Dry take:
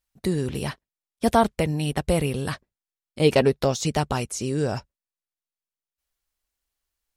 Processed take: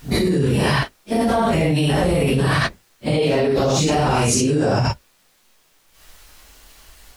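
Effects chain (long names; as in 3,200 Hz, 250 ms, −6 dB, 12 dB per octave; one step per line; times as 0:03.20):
random phases in long frames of 200 ms
high-shelf EQ 6,900 Hz −7.5 dB
envelope flattener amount 100%
level −1.5 dB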